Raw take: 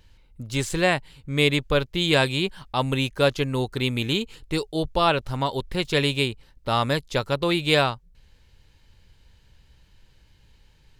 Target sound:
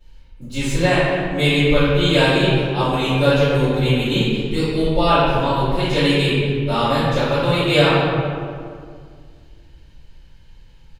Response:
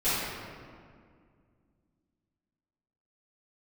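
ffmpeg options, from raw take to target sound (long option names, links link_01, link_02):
-filter_complex "[0:a]asplit=2[link_01][link_02];[link_02]adelay=232,lowpass=frequency=1900:poles=1,volume=-10.5dB,asplit=2[link_03][link_04];[link_04]adelay=232,lowpass=frequency=1900:poles=1,volume=0.47,asplit=2[link_05][link_06];[link_06]adelay=232,lowpass=frequency=1900:poles=1,volume=0.47,asplit=2[link_07][link_08];[link_08]adelay=232,lowpass=frequency=1900:poles=1,volume=0.47,asplit=2[link_09][link_10];[link_10]adelay=232,lowpass=frequency=1900:poles=1,volume=0.47[link_11];[link_01][link_03][link_05][link_07][link_09][link_11]amix=inputs=6:normalize=0[link_12];[1:a]atrim=start_sample=2205,asetrate=52920,aresample=44100[link_13];[link_12][link_13]afir=irnorm=-1:irlink=0,volume=-6dB"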